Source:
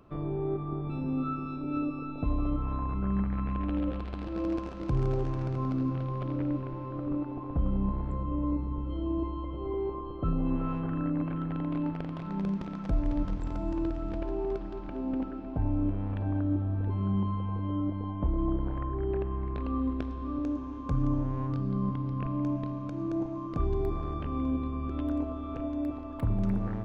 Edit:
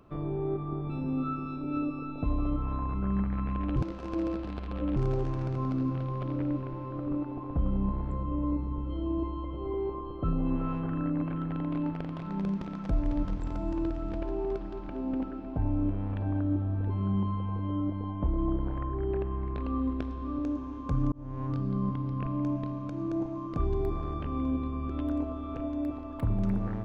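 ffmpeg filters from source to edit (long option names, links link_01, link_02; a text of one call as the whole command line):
ffmpeg -i in.wav -filter_complex "[0:a]asplit=4[link_01][link_02][link_03][link_04];[link_01]atrim=end=3.762[link_05];[link_02]atrim=start=3.758:end=4.962,asetpts=PTS-STARTPTS,areverse[link_06];[link_03]atrim=start=4.958:end=21.12,asetpts=PTS-STARTPTS,afade=type=out:start_time=16.158:duration=0.004:curve=hsin[link_07];[link_04]atrim=start=21.12,asetpts=PTS-STARTPTS,afade=type=in:duration=0.38[link_08];[link_05][link_06]acrossfade=duration=0.004:curve1=hsin:curve2=hsin[link_09];[link_07][link_08]concat=n=2:v=0:a=1[link_10];[link_09][link_10]acrossfade=duration=0.004:curve1=hsin:curve2=hsin" out.wav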